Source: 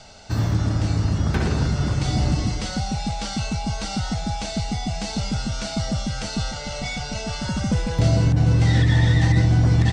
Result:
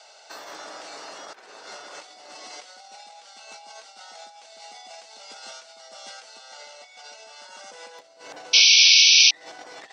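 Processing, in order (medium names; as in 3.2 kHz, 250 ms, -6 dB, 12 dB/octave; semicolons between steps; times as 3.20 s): high-pass 510 Hz 24 dB/octave; compressor with a negative ratio -36 dBFS, ratio -0.5; painted sound noise, 8.53–9.31 s, 2.2–6.1 kHz -7 dBFS; trim -7 dB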